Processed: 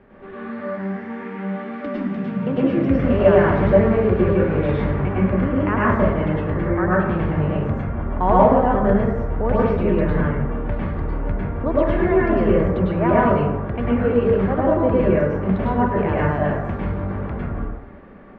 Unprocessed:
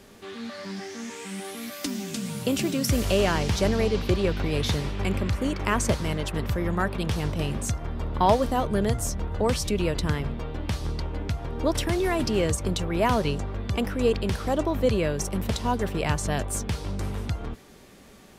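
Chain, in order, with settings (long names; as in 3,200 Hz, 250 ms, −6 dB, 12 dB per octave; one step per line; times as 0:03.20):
low-pass filter 2,000 Hz 24 dB per octave
dense smooth reverb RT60 0.88 s, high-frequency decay 0.45×, pre-delay 90 ms, DRR −6.5 dB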